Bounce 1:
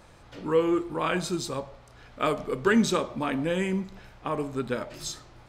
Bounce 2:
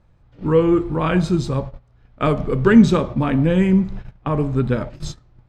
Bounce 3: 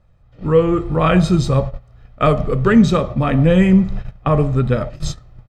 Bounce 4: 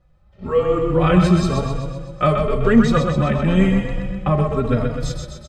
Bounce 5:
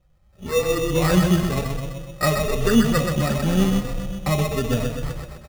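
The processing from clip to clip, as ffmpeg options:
ffmpeg -i in.wav -af "aemphasis=mode=reproduction:type=bsi,agate=range=-18dB:threshold=-34dB:ratio=16:detection=peak,equalizer=frequency=140:width=1.3:gain=5,volume=5dB" out.wav
ffmpeg -i in.wav -af "aecho=1:1:1.6:0.41,dynaudnorm=framelen=200:gausssize=3:maxgain=9dB,volume=-1dB" out.wav
ffmpeg -i in.wav -filter_complex "[0:a]asplit=2[link_01][link_02];[link_02]aecho=0:1:127|254|381|508|635|762|889|1016:0.562|0.332|0.196|0.115|0.0681|0.0402|0.0237|0.014[link_03];[link_01][link_03]amix=inputs=2:normalize=0,asplit=2[link_04][link_05];[link_05]adelay=3.6,afreqshift=0.97[link_06];[link_04][link_06]amix=inputs=2:normalize=1" out.wav
ffmpeg -i in.wav -af "acrusher=samples=14:mix=1:aa=0.000001,volume=-3.5dB" out.wav

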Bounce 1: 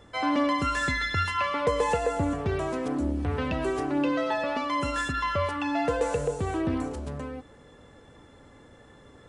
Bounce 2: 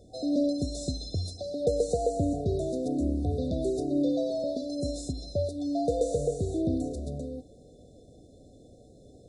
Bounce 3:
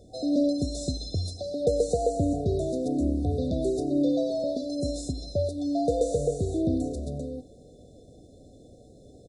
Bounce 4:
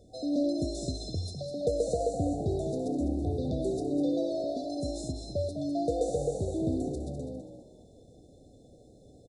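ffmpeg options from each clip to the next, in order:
ffmpeg -i in.wav -af "afftfilt=real='re*(1-between(b*sr/4096,760,3500))':imag='im*(1-between(b*sr/4096,760,3500))':win_size=4096:overlap=0.75" out.wav
ffmpeg -i in.wav -af "aecho=1:1:90:0.0841,volume=2dB" out.wav
ffmpeg -i in.wav -filter_complex "[0:a]asplit=5[link_01][link_02][link_03][link_04][link_05];[link_02]adelay=202,afreqshift=52,volume=-9dB[link_06];[link_03]adelay=404,afreqshift=104,volume=-19.2dB[link_07];[link_04]adelay=606,afreqshift=156,volume=-29.3dB[link_08];[link_05]adelay=808,afreqshift=208,volume=-39.5dB[link_09];[link_01][link_06][link_07][link_08][link_09]amix=inputs=5:normalize=0,volume=-4.5dB" out.wav

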